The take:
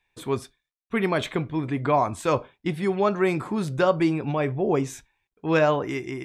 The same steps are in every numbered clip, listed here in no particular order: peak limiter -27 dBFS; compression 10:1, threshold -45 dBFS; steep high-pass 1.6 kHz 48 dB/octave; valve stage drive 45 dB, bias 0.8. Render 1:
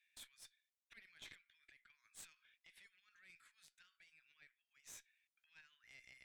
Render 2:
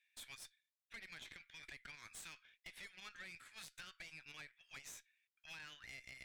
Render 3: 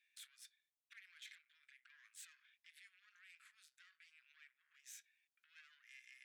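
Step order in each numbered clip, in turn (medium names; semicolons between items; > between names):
peak limiter > compression > steep high-pass > valve stage; steep high-pass > peak limiter > compression > valve stage; peak limiter > compression > valve stage > steep high-pass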